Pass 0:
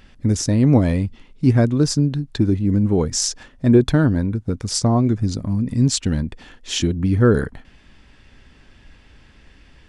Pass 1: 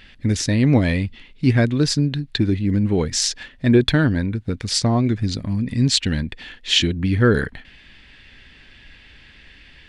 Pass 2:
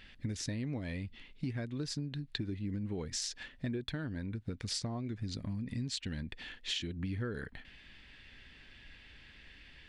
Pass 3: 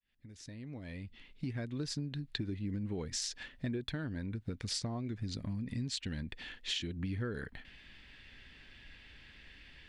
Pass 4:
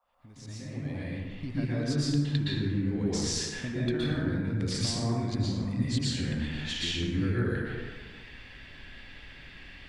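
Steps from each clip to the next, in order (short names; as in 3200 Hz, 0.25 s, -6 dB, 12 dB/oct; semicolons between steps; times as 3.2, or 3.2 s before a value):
band shelf 2700 Hz +10.5 dB; gain -1.5 dB
compressor 12:1, threshold -25 dBFS, peak gain reduction 16 dB; gain -9 dB
opening faded in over 1.72 s
band noise 520–1300 Hz -77 dBFS; plate-style reverb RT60 1.6 s, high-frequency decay 0.45×, pre-delay 0.105 s, DRR -8 dB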